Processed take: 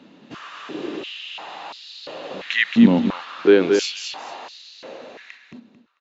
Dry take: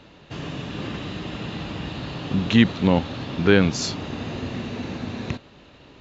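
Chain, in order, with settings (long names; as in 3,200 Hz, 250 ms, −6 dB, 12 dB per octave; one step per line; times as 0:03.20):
fade-out on the ending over 1.74 s
on a send: repeating echo 222 ms, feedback 23%, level −5 dB
on the sum: high-pass on a step sequencer 2.9 Hz 230–4,400 Hz
level −3.5 dB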